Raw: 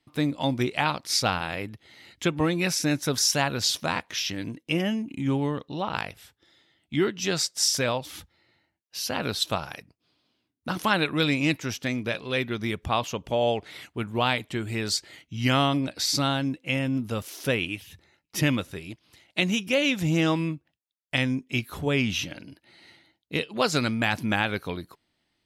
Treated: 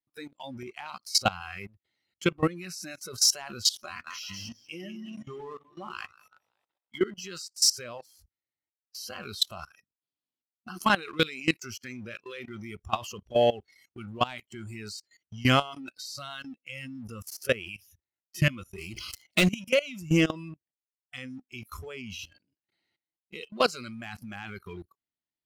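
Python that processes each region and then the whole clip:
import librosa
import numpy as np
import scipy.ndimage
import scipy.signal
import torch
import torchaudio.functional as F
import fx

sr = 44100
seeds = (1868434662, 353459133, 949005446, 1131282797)

y = fx.chain(x, sr, fx.comb_fb(f0_hz=120.0, decay_s=0.18, harmonics='all', damping=0.0, mix_pct=40),
    fx.echo_split(split_hz=430.0, low_ms=99, high_ms=189, feedback_pct=52, wet_db=-7.0), at=(3.85, 7.06))
y = fx.chain(y, sr, fx.leveller(passes=3),
    fx.sustainer(db_per_s=63.0), at=(18.78, 19.48))
y = fx.noise_reduce_blind(y, sr, reduce_db=22)
y = fx.leveller(y, sr, passes=1)
y = fx.level_steps(y, sr, step_db=20)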